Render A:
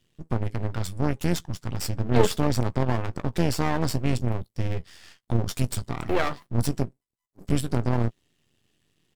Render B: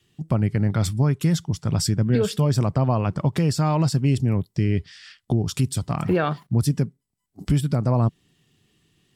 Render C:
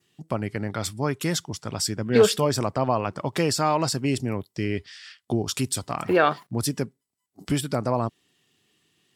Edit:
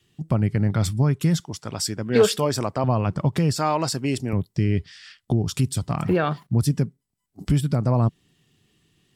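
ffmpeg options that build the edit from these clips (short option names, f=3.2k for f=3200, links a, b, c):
-filter_complex "[2:a]asplit=2[a][b];[1:a]asplit=3[c][d][e];[c]atrim=end=1.402[f];[a]atrim=start=1.398:end=2.842[g];[d]atrim=start=2.838:end=3.562[h];[b]atrim=start=3.558:end=4.332[i];[e]atrim=start=4.328[j];[f][g]acrossfade=d=0.004:c1=hsin:c2=hsin[k];[k][h]acrossfade=d=0.004:c1=hsin:c2=hsin[l];[l][i]acrossfade=d=0.004:c1=hsin:c2=hsin[m];[m][j]acrossfade=d=0.004:c1=hsin:c2=hsin"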